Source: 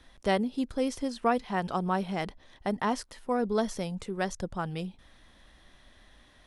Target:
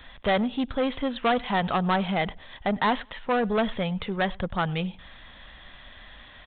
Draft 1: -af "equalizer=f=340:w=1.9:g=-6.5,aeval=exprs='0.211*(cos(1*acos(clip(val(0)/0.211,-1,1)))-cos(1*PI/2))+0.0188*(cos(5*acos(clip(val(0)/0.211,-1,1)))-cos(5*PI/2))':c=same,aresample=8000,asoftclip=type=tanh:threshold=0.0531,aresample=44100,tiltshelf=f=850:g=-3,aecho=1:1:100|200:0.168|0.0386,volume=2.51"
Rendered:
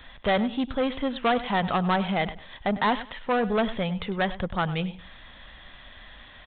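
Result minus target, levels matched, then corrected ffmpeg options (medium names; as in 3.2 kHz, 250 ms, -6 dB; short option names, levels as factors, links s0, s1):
echo-to-direct +9.5 dB
-af "equalizer=f=340:w=1.9:g=-6.5,aeval=exprs='0.211*(cos(1*acos(clip(val(0)/0.211,-1,1)))-cos(1*PI/2))+0.0188*(cos(5*acos(clip(val(0)/0.211,-1,1)))-cos(5*PI/2))':c=same,aresample=8000,asoftclip=type=tanh:threshold=0.0531,aresample=44100,tiltshelf=f=850:g=-3,aecho=1:1:100|200:0.0562|0.0129,volume=2.51"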